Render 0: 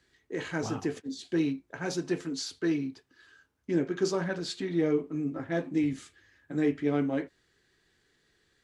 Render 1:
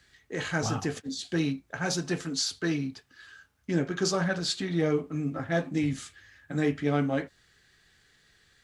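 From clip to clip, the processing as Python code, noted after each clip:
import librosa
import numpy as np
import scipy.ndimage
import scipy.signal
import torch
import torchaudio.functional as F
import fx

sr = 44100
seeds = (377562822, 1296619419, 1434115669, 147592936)

y = fx.peak_eq(x, sr, hz=350.0, db=-10.5, octaves=1.2)
y = fx.notch(y, sr, hz=970.0, q=11.0)
y = fx.dynamic_eq(y, sr, hz=2200.0, q=1.5, threshold_db=-56.0, ratio=4.0, max_db=-4)
y = y * librosa.db_to_amplitude(8.0)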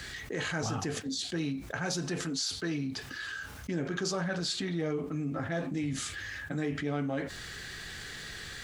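y = fx.env_flatten(x, sr, amount_pct=70)
y = y * librosa.db_to_amplitude(-8.0)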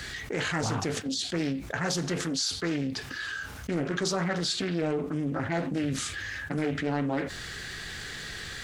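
y = fx.doppler_dist(x, sr, depth_ms=0.48)
y = y * librosa.db_to_amplitude(4.0)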